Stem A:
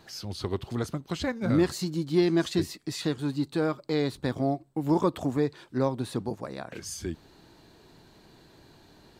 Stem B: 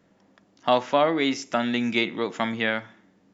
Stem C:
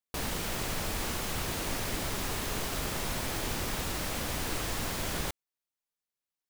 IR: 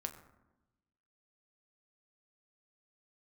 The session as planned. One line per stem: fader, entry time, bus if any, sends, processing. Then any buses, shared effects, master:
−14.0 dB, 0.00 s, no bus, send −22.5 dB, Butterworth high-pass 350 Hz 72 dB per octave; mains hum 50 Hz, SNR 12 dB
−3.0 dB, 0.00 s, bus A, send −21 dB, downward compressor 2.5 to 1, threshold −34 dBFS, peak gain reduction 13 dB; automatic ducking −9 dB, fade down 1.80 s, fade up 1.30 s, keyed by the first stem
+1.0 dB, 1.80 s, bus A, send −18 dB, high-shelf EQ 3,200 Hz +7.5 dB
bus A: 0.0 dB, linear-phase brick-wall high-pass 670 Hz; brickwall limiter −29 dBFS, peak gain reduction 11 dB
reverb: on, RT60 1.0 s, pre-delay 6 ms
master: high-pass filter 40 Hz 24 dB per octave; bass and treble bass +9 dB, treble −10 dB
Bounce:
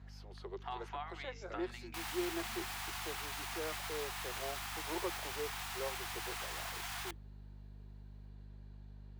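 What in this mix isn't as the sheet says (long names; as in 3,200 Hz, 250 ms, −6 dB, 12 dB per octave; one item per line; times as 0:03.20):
stem C: send −18 dB → −24 dB
reverb return −8.0 dB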